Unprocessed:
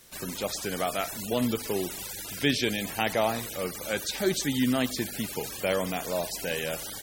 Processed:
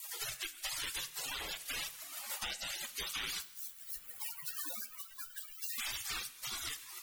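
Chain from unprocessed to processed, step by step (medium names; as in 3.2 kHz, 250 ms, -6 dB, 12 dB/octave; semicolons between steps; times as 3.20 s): 3.40–5.79 s: spectral contrast reduction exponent 0.13; low-pass 1.3 kHz 6 dB/octave; spectral gate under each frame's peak -30 dB weak; peak limiter -44 dBFS, peak gain reduction 11 dB; rotary cabinet horn 0.8 Hz; two-slope reverb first 0.58 s, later 3.4 s, from -26 dB, DRR 12.5 dB; three bands compressed up and down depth 100%; trim +17.5 dB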